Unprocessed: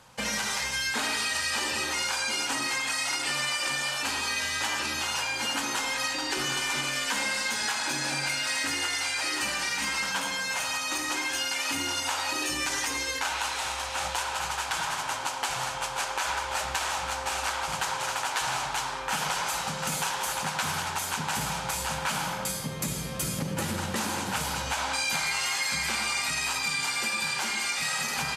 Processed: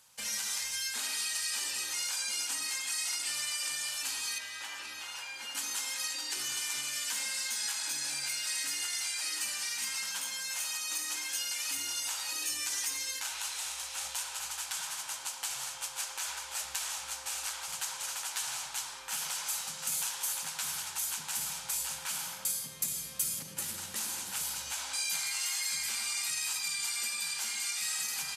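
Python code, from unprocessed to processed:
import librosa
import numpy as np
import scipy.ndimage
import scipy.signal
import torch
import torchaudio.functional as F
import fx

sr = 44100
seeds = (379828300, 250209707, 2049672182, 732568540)

y = fx.bass_treble(x, sr, bass_db=-6, treble_db=-12, at=(4.38, 5.55))
y = F.preemphasis(torch.from_numpy(y), 0.9).numpy()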